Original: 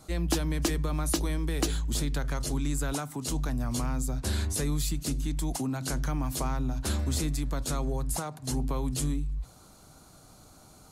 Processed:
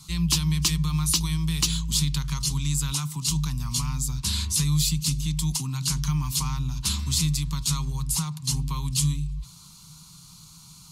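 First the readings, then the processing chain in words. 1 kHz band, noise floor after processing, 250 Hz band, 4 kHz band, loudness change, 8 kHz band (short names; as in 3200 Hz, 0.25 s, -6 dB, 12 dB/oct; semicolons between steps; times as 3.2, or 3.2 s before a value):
-1.0 dB, -49 dBFS, +2.0 dB, +11.0 dB, +5.5 dB, +9.0 dB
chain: EQ curve 110 Hz 0 dB, 160 Hz +13 dB, 230 Hz -6 dB, 650 Hz -24 dB, 1000 Hz +5 dB, 1600 Hz -7 dB, 2700 Hz +9 dB, 4800 Hz +12 dB, 9800 Hz +7 dB; Opus 96 kbps 48000 Hz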